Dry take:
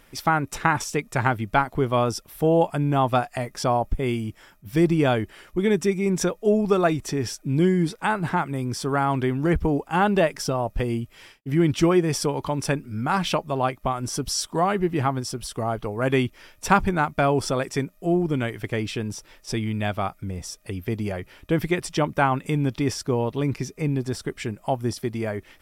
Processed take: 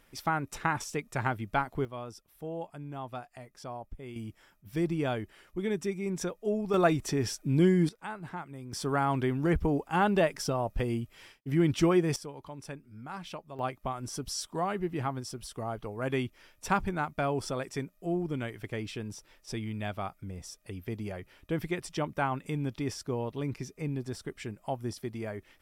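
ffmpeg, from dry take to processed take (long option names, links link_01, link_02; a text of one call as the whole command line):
ffmpeg -i in.wav -af "asetnsamples=nb_out_samples=441:pad=0,asendcmd='1.85 volume volume -19dB;4.16 volume volume -10.5dB;6.74 volume volume -3.5dB;7.89 volume volume -16dB;8.73 volume volume -5.5dB;12.16 volume volume -18dB;13.59 volume volume -9.5dB',volume=-8.5dB" out.wav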